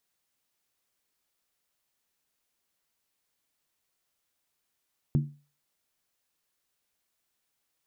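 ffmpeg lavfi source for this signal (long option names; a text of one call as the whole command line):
ffmpeg -f lavfi -i "aevalsrc='0.126*pow(10,-3*t/0.35)*sin(2*PI*145*t)+0.0531*pow(10,-3*t/0.277)*sin(2*PI*231.1*t)+0.0224*pow(10,-3*t/0.239)*sin(2*PI*309.7*t)+0.00944*pow(10,-3*t/0.231)*sin(2*PI*332.9*t)+0.00398*pow(10,-3*t/0.215)*sin(2*PI*384.7*t)':duration=0.63:sample_rate=44100" out.wav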